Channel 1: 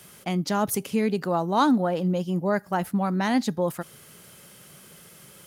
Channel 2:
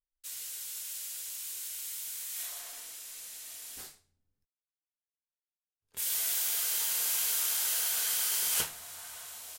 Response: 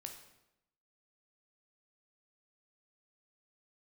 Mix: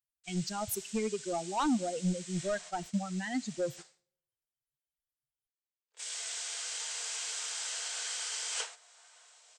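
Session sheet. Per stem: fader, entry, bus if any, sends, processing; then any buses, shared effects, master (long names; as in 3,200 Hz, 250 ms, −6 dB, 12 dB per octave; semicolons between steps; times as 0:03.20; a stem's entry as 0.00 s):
−3.0 dB, 0.00 s, send −16 dB, spectral dynamics exaggerated over time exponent 3; soft clipping −23 dBFS, distortion −13 dB
−2.0 dB, 0.00 s, no send, Chebyshev band-pass filter 440–8,200 Hz, order 5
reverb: on, RT60 0.85 s, pre-delay 12 ms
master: noise gate −46 dBFS, range −9 dB; low-shelf EQ 82 Hz +11.5 dB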